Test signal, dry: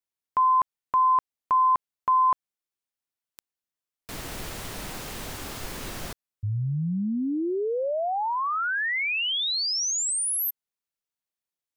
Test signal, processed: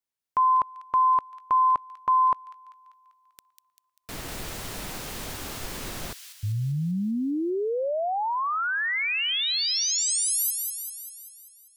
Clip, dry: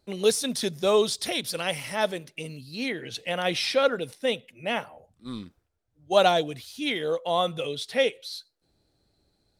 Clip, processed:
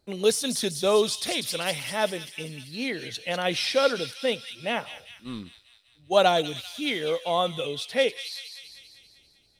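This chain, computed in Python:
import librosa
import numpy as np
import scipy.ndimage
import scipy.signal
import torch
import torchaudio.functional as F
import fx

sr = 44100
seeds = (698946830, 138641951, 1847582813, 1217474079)

y = fx.echo_wet_highpass(x, sr, ms=196, feedback_pct=58, hz=3100.0, wet_db=-5.0)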